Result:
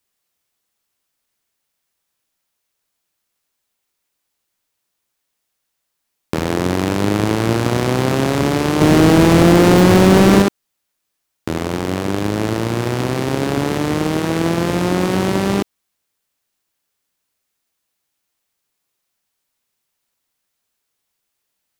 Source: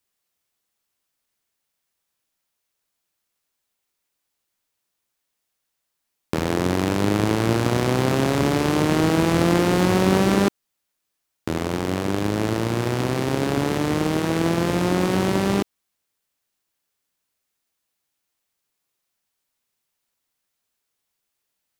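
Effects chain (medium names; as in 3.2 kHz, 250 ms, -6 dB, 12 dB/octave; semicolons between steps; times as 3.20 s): 8.81–10.42 s: waveshaping leveller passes 2; trim +3.5 dB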